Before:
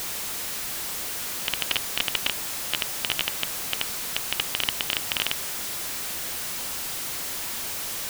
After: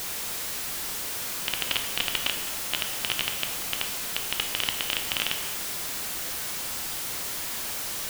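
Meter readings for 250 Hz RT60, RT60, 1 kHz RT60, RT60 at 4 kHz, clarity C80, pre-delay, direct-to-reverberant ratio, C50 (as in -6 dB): 1.6 s, 1.5 s, 1.5 s, 1.1 s, 8.5 dB, 9 ms, 4.5 dB, 7.0 dB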